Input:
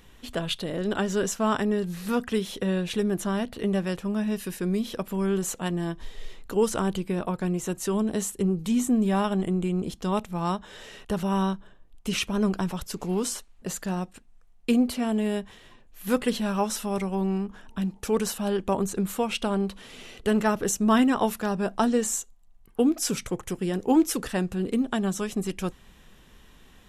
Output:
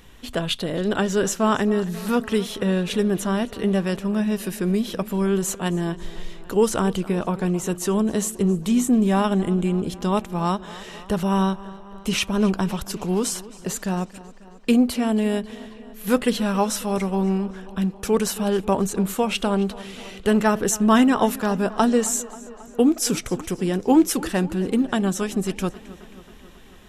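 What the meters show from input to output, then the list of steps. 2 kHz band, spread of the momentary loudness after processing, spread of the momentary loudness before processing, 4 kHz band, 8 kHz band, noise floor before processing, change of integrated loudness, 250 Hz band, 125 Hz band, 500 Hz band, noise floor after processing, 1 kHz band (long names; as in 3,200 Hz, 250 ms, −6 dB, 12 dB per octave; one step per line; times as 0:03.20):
+4.5 dB, 11 LU, 10 LU, +4.5 dB, +4.5 dB, −54 dBFS, +4.5 dB, +4.5 dB, +4.5 dB, +4.5 dB, −44 dBFS, +4.5 dB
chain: tape delay 270 ms, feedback 72%, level −17.5 dB, low-pass 5,300 Hz
level +4.5 dB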